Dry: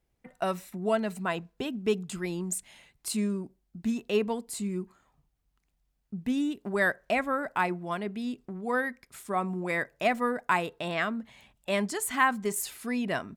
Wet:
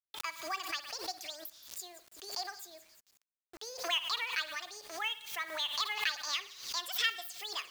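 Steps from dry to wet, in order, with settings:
first-order pre-emphasis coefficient 0.97
echo with a time of its own for lows and highs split 2,700 Hz, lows 98 ms, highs 305 ms, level −15 dB
wrong playback speed 45 rpm record played at 78 rpm
in parallel at −0.5 dB: downward compressor 20 to 1, threshold −51 dBFS, peak gain reduction 24 dB
on the sum: three-way crossover with the lows and the highs turned down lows −22 dB, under 490 Hz, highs −22 dB, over 6,700 Hz
log-companded quantiser 6 bits
background raised ahead of every attack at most 91 dB per second
level +7 dB

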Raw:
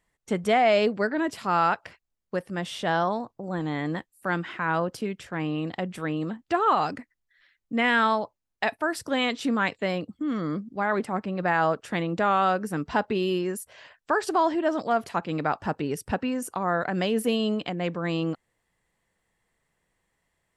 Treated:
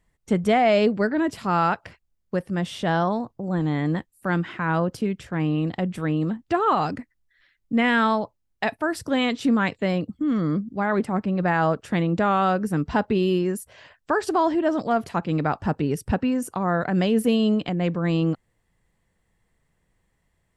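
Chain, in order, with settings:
low-shelf EQ 250 Hz +11.5 dB

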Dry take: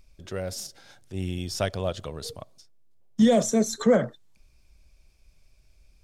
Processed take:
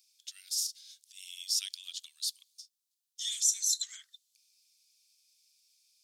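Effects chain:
inverse Chebyshev high-pass filter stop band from 620 Hz, stop band 80 dB
level +5 dB

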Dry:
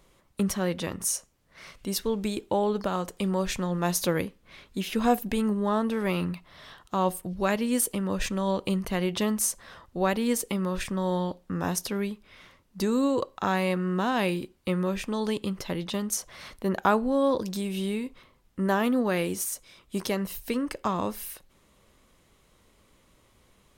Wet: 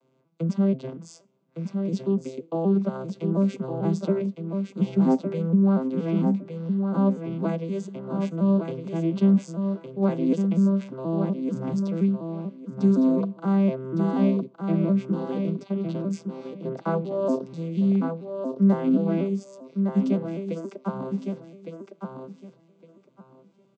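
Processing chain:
vocoder with an arpeggio as carrier major triad, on C3, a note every 240 ms
high-pass filter 180 Hz 24 dB per octave
low-shelf EQ 470 Hz +7.5 dB
notch filter 1,800 Hz, Q 5
repeating echo 1,160 ms, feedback 19%, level −6 dB

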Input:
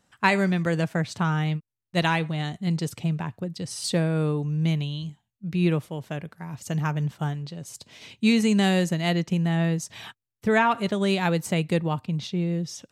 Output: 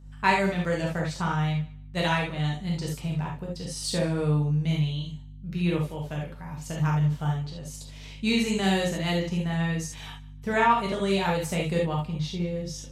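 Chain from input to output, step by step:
low-shelf EQ 220 Hz −3 dB
on a send: feedback echo with a high-pass in the loop 150 ms, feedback 22%, level −20.5 dB
on the sum: mains hum 50 Hz, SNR 18 dB
reverb whose tail is shaped and stops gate 100 ms flat, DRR −2.5 dB
level −5.5 dB

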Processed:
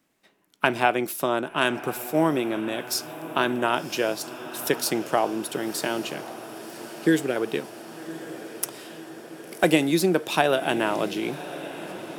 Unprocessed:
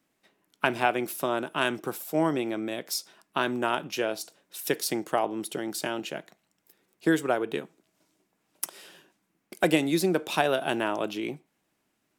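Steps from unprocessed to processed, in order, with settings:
0:06.09–0:07.36: flat-topped bell 920 Hz −15 dB 1.3 octaves
feedback delay with all-pass diffusion 1,092 ms, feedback 68%, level −14 dB
0:01.41–0:02.98: one half of a high-frequency compander decoder only
level +3.5 dB

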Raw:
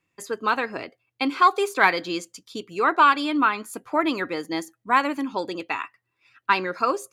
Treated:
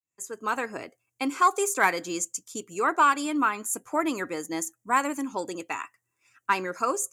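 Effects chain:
fade in at the beginning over 0.60 s
high shelf with overshoot 5,400 Hz +10 dB, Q 3
level −3.5 dB

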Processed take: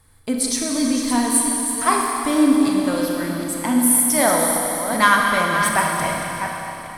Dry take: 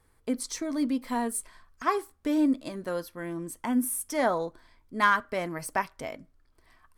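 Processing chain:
delay that plays each chunk backwards 382 ms, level −8 dB
graphic EQ with 15 bands 100 Hz +8 dB, 400 Hz −7 dB, 4,000 Hz +5 dB, 10,000 Hz +8 dB
four-comb reverb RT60 3.5 s, combs from 29 ms, DRR −0.5 dB
level +7.5 dB

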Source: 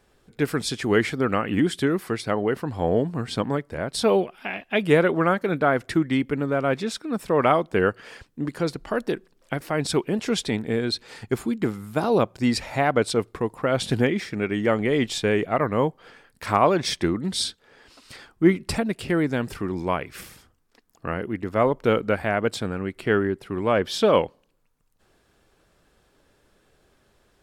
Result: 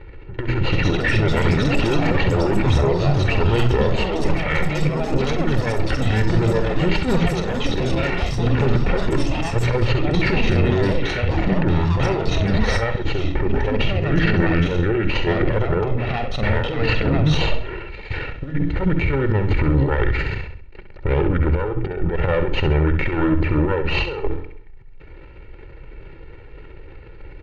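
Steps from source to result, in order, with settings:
lower of the sound and its delayed copy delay 0.37 ms
low-pass filter 3,500 Hz 24 dB per octave
low-shelf EQ 120 Hz +11.5 dB
mains-hum notches 50/100/150/200/250/300/350/400 Hz
comb filter 1.8 ms, depth 73%
compressor whose output falls as the input rises −26 dBFS, ratio −0.5
transient designer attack +1 dB, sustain +8 dB
brickwall limiter −19.5 dBFS, peak gain reduction 9 dB
pitch shifter −3.5 semitones
on a send: repeating echo 66 ms, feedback 37%, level −8.5 dB
on the sum: delay with pitch and tempo change per echo 380 ms, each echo +6 semitones, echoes 3, each echo −6 dB
level +9 dB

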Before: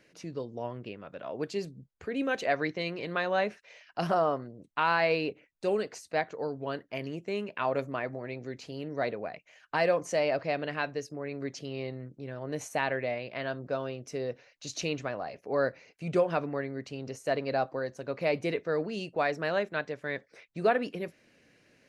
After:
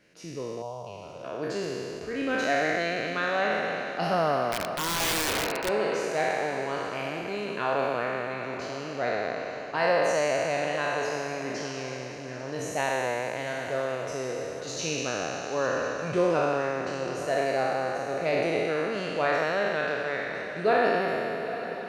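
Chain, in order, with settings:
peak hold with a decay on every bin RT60 2.96 s
0:00.62–0:01.24: phaser with its sweep stopped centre 740 Hz, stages 4
on a send: feedback delay with all-pass diffusion 838 ms, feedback 46%, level −12 dB
0:04.52–0:05.69: on the sum: wrap-around overflow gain 19.5 dB
level −2 dB

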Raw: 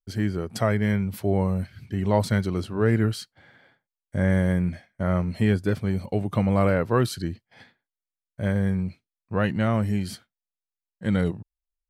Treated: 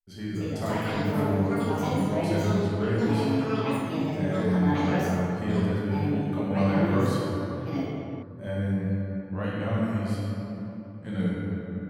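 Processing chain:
tuned comb filter 290 Hz, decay 1 s, mix 80%
rectangular room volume 200 cubic metres, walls hard, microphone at 1.1 metres
delay with pitch and tempo change per echo 285 ms, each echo +7 semitones, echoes 2

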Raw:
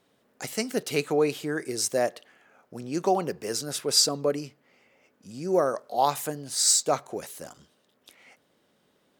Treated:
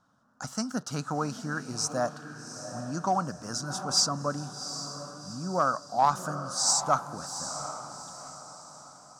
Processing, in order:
drawn EQ curve 130 Hz 0 dB, 260 Hz −3 dB, 410 Hz −21 dB, 590 Hz −8 dB, 1,400 Hz +6 dB, 2,100 Hz −23 dB, 4,000 Hz −12 dB, 5,800 Hz −2 dB, 14,000 Hz −23 dB
in parallel at −7 dB: asymmetric clip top −21.5 dBFS
on the sum: feedback delay with all-pass diffusion 766 ms, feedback 42%, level −10 dB

